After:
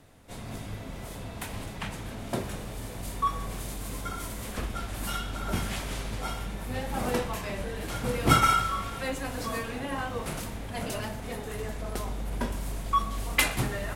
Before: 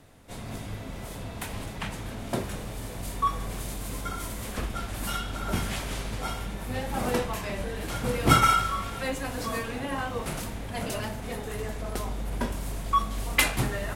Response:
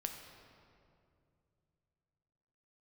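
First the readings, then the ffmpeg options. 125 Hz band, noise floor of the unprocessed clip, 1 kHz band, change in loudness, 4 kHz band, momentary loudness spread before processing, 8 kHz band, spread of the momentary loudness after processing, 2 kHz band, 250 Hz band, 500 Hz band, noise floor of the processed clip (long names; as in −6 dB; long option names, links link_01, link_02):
−1.5 dB, −39 dBFS, −1.5 dB, −1.5 dB, −1.5 dB, 12 LU, −1.5 dB, 12 LU, −1.5 dB, −1.5 dB, −1.5 dB, −40 dBFS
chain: -filter_complex "[0:a]asplit=2[link_01][link_02];[1:a]atrim=start_sample=2205,adelay=121[link_03];[link_02][link_03]afir=irnorm=-1:irlink=0,volume=-17.5dB[link_04];[link_01][link_04]amix=inputs=2:normalize=0,volume=-1.5dB"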